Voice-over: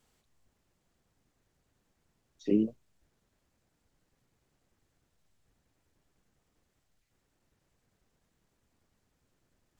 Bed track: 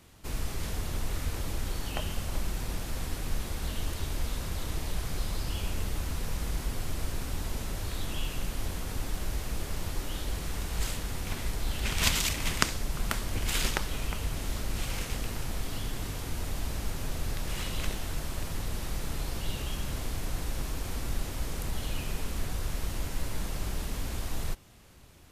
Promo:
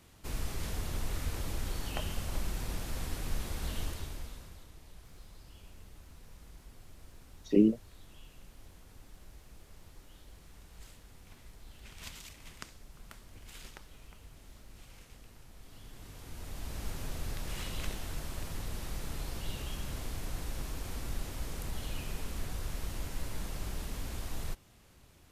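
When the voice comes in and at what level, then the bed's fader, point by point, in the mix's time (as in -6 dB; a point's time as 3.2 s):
5.05 s, +3.0 dB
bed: 3.82 s -3 dB
4.72 s -20.5 dB
15.52 s -20.5 dB
16.87 s -5 dB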